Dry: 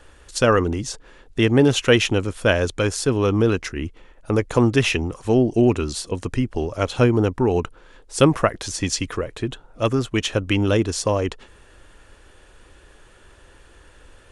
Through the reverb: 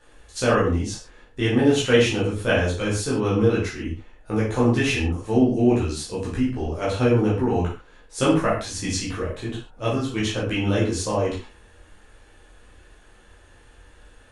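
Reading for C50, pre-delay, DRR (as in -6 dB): 4.0 dB, 10 ms, -8.0 dB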